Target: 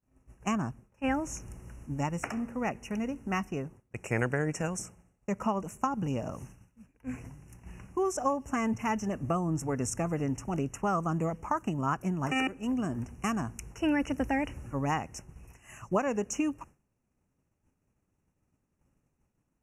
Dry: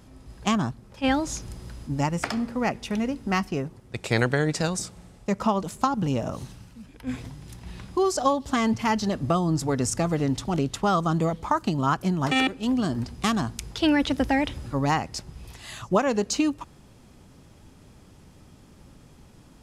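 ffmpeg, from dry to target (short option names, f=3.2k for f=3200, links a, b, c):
-af "asuperstop=centerf=4000:order=20:qfactor=1.6,agate=range=-33dB:threshold=-38dB:ratio=3:detection=peak,volume=-6.5dB"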